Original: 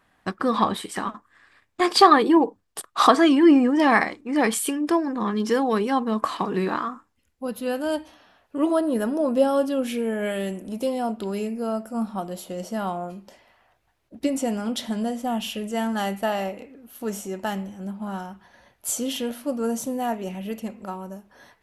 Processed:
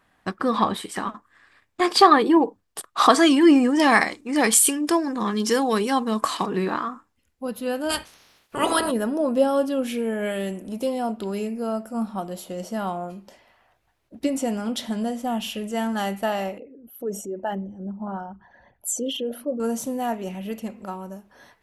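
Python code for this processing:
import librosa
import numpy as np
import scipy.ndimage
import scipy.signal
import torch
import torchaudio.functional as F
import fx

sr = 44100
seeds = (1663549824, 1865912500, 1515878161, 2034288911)

y = fx.peak_eq(x, sr, hz=8300.0, db=11.5, octaves=2.2, at=(3.1, 6.46))
y = fx.spec_clip(y, sr, under_db=27, at=(7.89, 8.9), fade=0.02)
y = fx.envelope_sharpen(y, sr, power=2.0, at=(16.58, 19.6))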